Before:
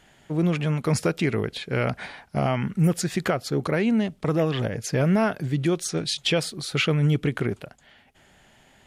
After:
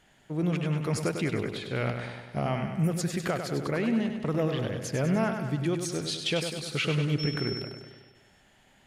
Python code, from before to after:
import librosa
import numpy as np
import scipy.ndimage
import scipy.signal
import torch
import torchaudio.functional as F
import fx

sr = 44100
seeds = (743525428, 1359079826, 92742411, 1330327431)

y = fx.dmg_tone(x, sr, hz=5400.0, level_db=-27.0, at=(7.18, 7.61), fade=0.02)
y = fx.echo_feedback(y, sr, ms=99, feedback_pct=60, wet_db=-7.0)
y = F.gain(torch.from_numpy(y), -6.0).numpy()